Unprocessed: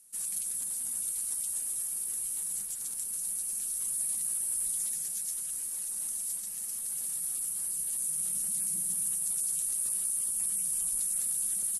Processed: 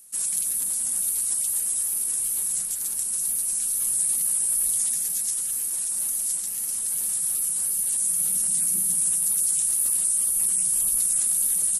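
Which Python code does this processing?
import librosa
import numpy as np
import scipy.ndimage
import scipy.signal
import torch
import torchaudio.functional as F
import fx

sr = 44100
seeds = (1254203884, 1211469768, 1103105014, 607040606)

y = fx.hum_notches(x, sr, base_hz=50, count=4)
y = fx.wow_flutter(y, sr, seeds[0], rate_hz=2.1, depth_cents=69.0)
y = F.gain(torch.from_numpy(y), 8.5).numpy()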